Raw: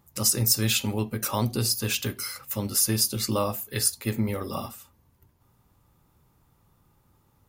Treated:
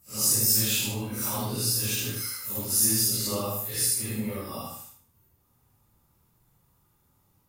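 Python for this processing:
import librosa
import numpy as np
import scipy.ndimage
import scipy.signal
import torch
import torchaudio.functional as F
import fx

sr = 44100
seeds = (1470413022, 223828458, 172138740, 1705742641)

p1 = fx.phase_scramble(x, sr, seeds[0], window_ms=200)
p2 = fx.high_shelf(p1, sr, hz=5500.0, db=8.0)
p3 = p2 + fx.echo_feedback(p2, sr, ms=76, feedback_pct=31, wet_db=-4.5, dry=0)
y = F.gain(torch.from_numpy(p3), -5.5).numpy()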